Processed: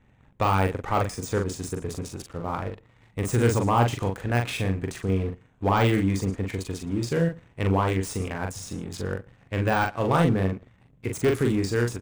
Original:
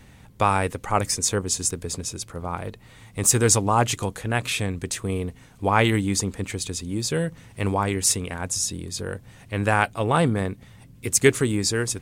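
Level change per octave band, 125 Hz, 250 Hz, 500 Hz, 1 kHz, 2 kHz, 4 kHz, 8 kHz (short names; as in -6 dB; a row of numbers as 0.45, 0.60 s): +1.0, 0.0, -1.0, -2.0, -4.0, -8.0, -15.5 dB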